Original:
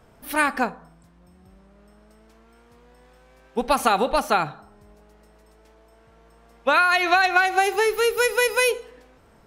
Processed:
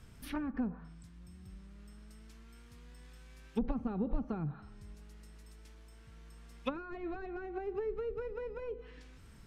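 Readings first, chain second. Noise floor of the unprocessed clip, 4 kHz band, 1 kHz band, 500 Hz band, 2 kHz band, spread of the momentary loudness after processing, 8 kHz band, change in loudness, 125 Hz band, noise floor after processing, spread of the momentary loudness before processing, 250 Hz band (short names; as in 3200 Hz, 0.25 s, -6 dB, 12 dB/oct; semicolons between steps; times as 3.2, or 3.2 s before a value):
-55 dBFS, -28.0 dB, -26.5 dB, -16.5 dB, -30.0 dB, 19 LU, under -25 dB, -18.5 dB, 0.0 dB, -55 dBFS, 11 LU, -5.5 dB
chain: passive tone stack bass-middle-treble 6-0-2; sine folder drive 8 dB, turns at -26.5 dBFS; treble ducked by the level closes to 410 Hz, closed at -31.5 dBFS; gain +4 dB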